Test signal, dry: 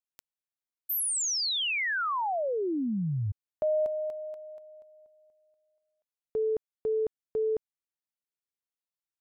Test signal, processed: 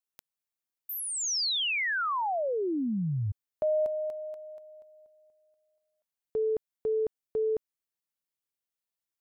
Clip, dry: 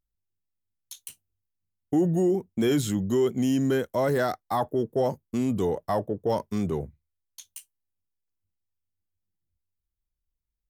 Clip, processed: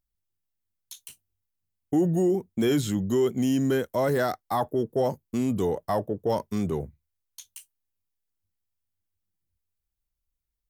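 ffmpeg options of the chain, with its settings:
-filter_complex "[0:a]acrossover=split=6400[a][b];[b]acompressor=threshold=-40dB:ratio=4:attack=1:release=60[c];[a][c]amix=inputs=2:normalize=0,highshelf=f=9.7k:g=5"

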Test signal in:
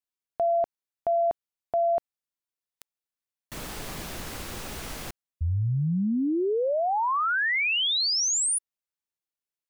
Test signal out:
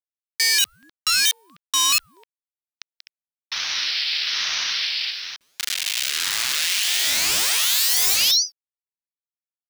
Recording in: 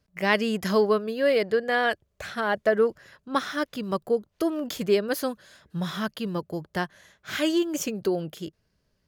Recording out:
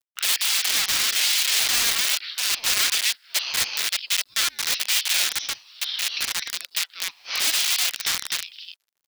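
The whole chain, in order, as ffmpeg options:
-af "aecho=1:1:186.6|253.6:0.355|0.708,aresample=11025,aresample=44100,aeval=exprs='(mod(12.6*val(0)+1,2)-1)/12.6':c=same,aexciter=amount=12.2:drive=6.9:freq=2.1k,aeval=exprs='1*(abs(mod(val(0)/1+3,4)-2)-1)':c=same,acrusher=bits=7:mix=0:aa=0.000001,highpass=f=1k:w=0.5412,highpass=f=1k:w=1.3066,dynaudnorm=f=110:g=9:m=7dB,aeval=exprs='val(0)*sin(2*PI*610*n/s+610*0.65/1.1*sin(2*PI*1.1*n/s))':c=same,volume=-6.5dB"

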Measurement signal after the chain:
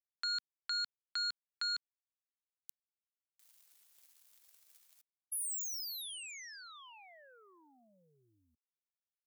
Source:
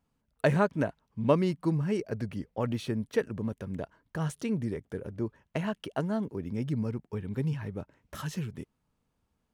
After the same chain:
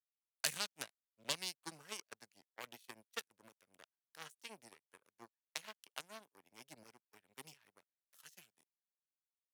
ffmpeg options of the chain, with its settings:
-filter_complex "[0:a]aeval=exprs='0.299*(cos(1*acos(clip(val(0)/0.299,-1,1)))-cos(1*PI/2))+0.0422*(cos(7*acos(clip(val(0)/0.299,-1,1)))-cos(7*PI/2))':c=same,aderivative,acrossover=split=190|3000[a][b][c];[b]acompressor=threshold=-54dB:ratio=4[d];[a][d][c]amix=inputs=3:normalize=0,volume=9dB"

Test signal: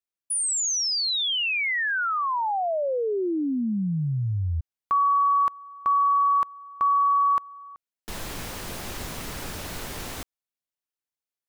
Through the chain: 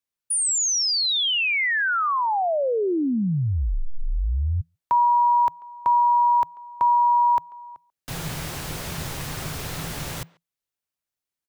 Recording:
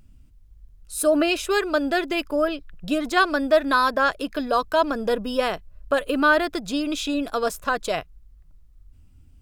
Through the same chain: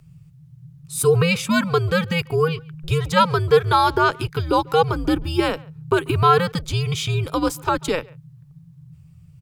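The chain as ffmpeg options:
-filter_complex "[0:a]afreqshift=-170,asplit=2[a][b];[b]adelay=140,highpass=300,lowpass=3.4k,asoftclip=type=hard:threshold=-15.5dB,volume=-24dB[c];[a][c]amix=inputs=2:normalize=0,volume=3dB"

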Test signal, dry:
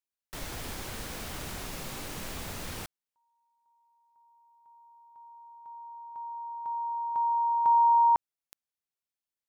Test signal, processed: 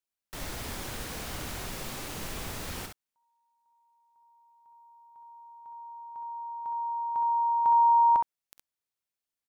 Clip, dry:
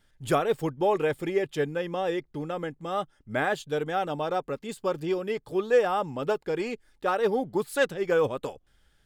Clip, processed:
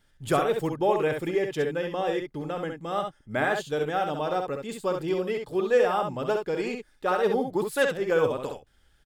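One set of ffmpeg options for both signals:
-af "aecho=1:1:50|66:0.188|0.531"

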